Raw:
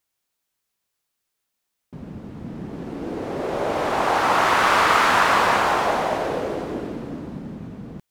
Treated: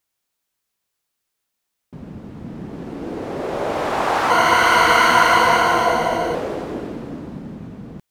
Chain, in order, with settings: 4.30–6.35 s: rippled EQ curve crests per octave 1.9, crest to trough 14 dB; trim +1 dB

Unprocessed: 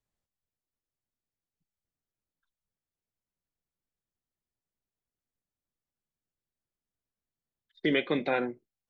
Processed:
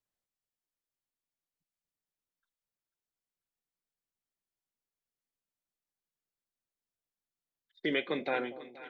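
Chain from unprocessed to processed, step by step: bass shelf 200 Hz -9 dB; two-band feedback delay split 790 Hz, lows 236 ms, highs 492 ms, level -14.5 dB; trim -3 dB

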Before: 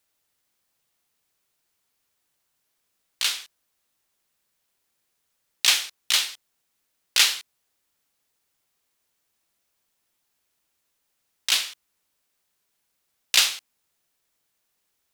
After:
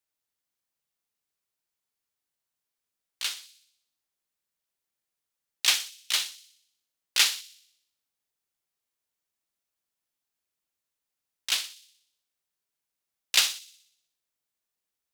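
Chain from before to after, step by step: feedback echo behind a high-pass 61 ms, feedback 58%, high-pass 3.9 kHz, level -7 dB; upward expansion 1.5:1, over -34 dBFS; trim -2.5 dB

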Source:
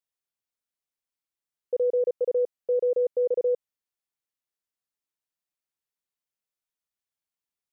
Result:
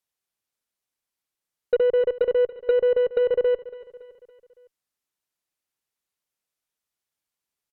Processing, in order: low-pass that closes with the level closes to 550 Hz, closed at -23 dBFS; Chebyshev shaper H 3 -18 dB, 5 -33 dB, 8 -31 dB, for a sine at -19 dBFS; feedback delay 281 ms, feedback 51%, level -17 dB; trim +8 dB

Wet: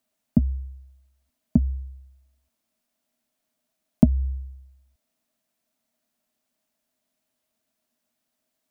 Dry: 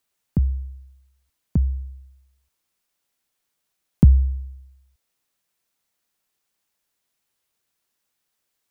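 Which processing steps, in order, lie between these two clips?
compression, threshold -16 dBFS, peak gain reduction 8.5 dB; small resonant body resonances 240/630 Hz, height 17 dB, ringing for 65 ms; trim -3 dB

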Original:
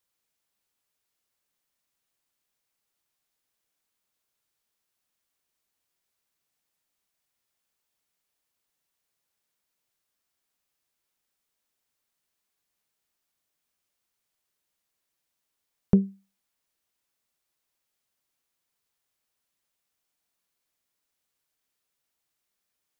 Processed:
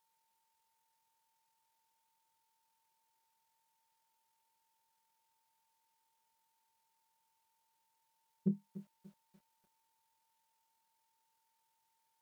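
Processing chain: high-pass 98 Hz 24 dB/octave; peaking EQ 260 Hz -6.5 dB 0.79 oct; peak limiter -21 dBFS, peak gain reduction 9.5 dB; granular stretch 0.51×, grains 46 ms; whistle 940 Hz -80 dBFS; speed mistake 25 fps video run at 24 fps; bit-crushed delay 292 ms, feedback 35%, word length 10-bit, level -15 dB

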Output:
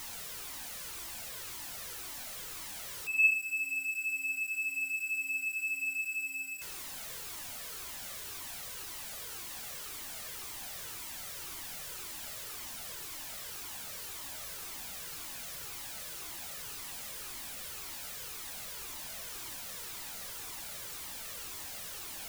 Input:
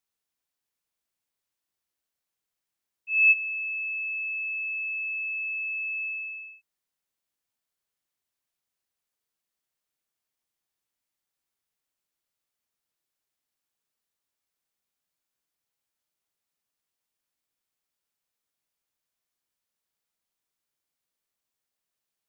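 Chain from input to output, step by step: jump at every zero crossing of -29 dBFS; on a send: filtered feedback delay 96 ms, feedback 68%, low-pass 2.5 kHz, level -9.5 dB; on the sum: Shepard-style flanger falling 1.9 Hz; trim -2.5 dB

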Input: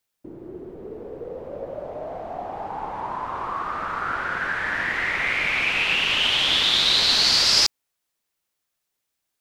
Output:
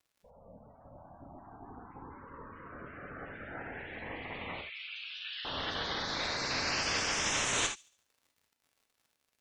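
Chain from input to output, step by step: spectral gate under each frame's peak -15 dB weak; crackle 140 per s -51 dBFS; spectral gate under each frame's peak -15 dB strong; 4.61–5.45 s: elliptic high-pass 1.8 kHz, stop band 70 dB; feedback echo behind a high-pass 73 ms, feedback 42%, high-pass 3.1 kHz, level -20 dB; gated-style reverb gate 100 ms flat, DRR 3.5 dB; trim -5 dB

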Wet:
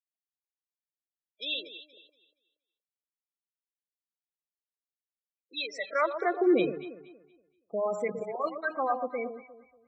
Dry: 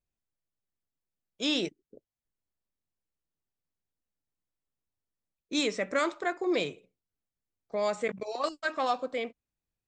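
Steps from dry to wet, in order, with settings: spectral gate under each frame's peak -15 dB strong; high-pass sweep 970 Hz -> 65 Hz, 5.88–7.22 s; echo whose repeats swap between lows and highs 118 ms, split 1.1 kHz, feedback 53%, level -8 dB

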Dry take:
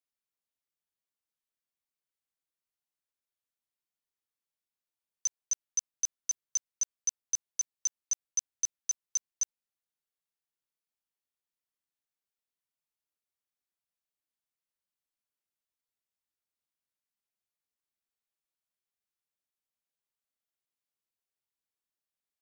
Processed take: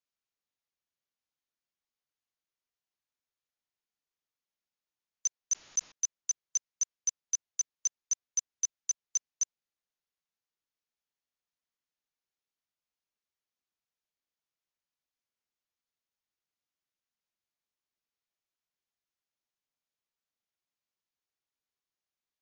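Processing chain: brick-wall FIR low-pass 7.1 kHz; 5.52–5.92 s: level flattener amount 100%

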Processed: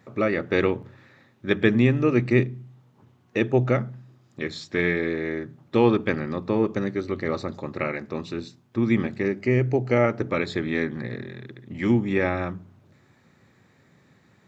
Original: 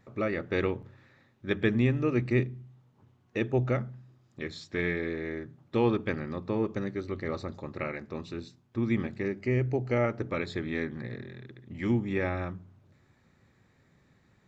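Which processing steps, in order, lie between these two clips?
high-pass 110 Hz; trim +7 dB

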